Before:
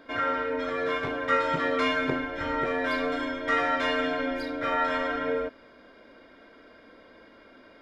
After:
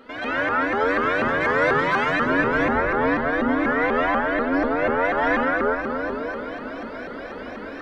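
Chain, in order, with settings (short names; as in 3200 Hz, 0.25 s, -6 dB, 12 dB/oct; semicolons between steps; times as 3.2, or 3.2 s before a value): 2.49–5.05 LPF 1200 Hz 6 dB/oct; compressor 3:1, threshold -38 dBFS, peak gain reduction 14 dB; reverb RT60 4.4 s, pre-delay 0.118 s, DRR -13 dB; shaped vibrato saw up 4.1 Hz, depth 250 cents; gain +4 dB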